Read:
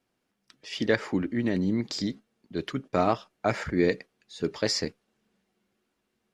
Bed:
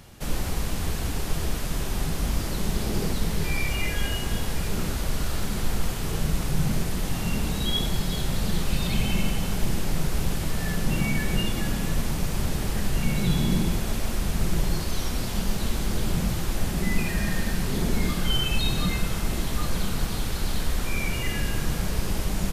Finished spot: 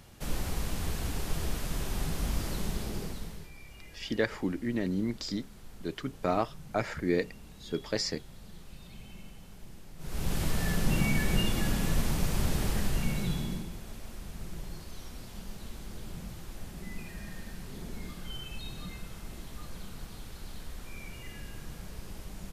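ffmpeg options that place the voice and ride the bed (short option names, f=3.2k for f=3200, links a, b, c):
-filter_complex "[0:a]adelay=3300,volume=-4.5dB[a];[1:a]volume=15.5dB,afade=t=out:st=2.51:d=0.99:silence=0.125893,afade=t=in:st=9.98:d=0.43:silence=0.0891251,afade=t=out:st=12.66:d=1.02:silence=0.199526[b];[a][b]amix=inputs=2:normalize=0"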